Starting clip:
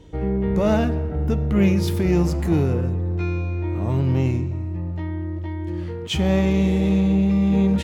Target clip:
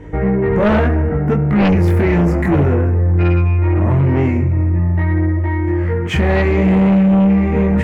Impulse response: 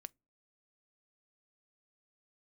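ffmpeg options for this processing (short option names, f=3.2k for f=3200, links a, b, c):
-filter_complex "[0:a]highshelf=f=2.7k:t=q:w=3:g=-11,asplit=2[a][b];[b]acompressor=threshold=-25dB:ratio=6,volume=-1dB[c];[a][c]amix=inputs=2:normalize=0,flanger=delay=20:depth=4:speed=0.71,aeval=exprs='0.473*sin(PI/2*2.51*val(0)/0.473)':c=same,volume=-2.5dB"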